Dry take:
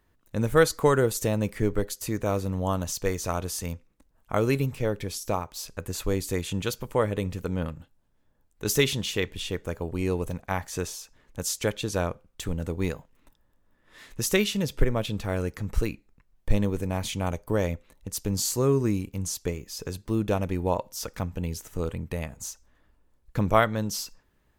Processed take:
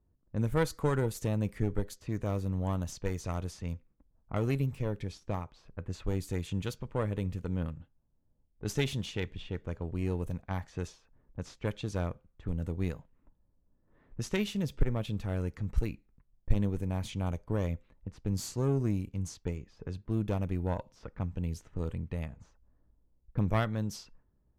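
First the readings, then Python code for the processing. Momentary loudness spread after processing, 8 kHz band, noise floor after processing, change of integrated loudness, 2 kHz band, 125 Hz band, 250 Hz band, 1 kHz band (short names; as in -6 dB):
11 LU, -15.0 dB, -72 dBFS, -6.5 dB, -10.5 dB, -2.5 dB, -5.0 dB, -10.0 dB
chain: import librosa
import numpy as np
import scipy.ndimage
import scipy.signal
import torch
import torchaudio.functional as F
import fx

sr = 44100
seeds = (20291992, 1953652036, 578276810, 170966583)

y = fx.diode_clip(x, sr, knee_db=-21.5)
y = fx.bass_treble(y, sr, bass_db=7, treble_db=-3)
y = fx.env_lowpass(y, sr, base_hz=680.0, full_db=-21.0)
y = y * librosa.db_to_amplitude(-8.5)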